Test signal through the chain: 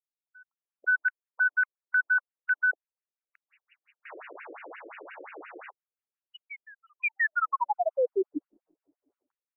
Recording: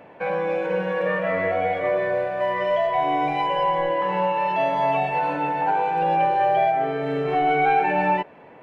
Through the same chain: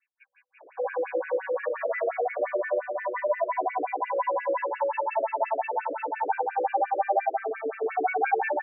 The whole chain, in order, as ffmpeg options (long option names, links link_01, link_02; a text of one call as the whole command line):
ffmpeg -i in.wav -filter_complex "[0:a]acrossover=split=3400[link_01][link_02];[link_01]adelay=570[link_03];[link_03][link_02]amix=inputs=2:normalize=0,afftfilt=real='re*between(b*sr/1024,400*pow(2100/400,0.5+0.5*sin(2*PI*5.7*pts/sr))/1.41,400*pow(2100/400,0.5+0.5*sin(2*PI*5.7*pts/sr))*1.41)':imag='im*between(b*sr/1024,400*pow(2100/400,0.5+0.5*sin(2*PI*5.7*pts/sr))/1.41,400*pow(2100/400,0.5+0.5*sin(2*PI*5.7*pts/sr))*1.41)':win_size=1024:overlap=0.75" out.wav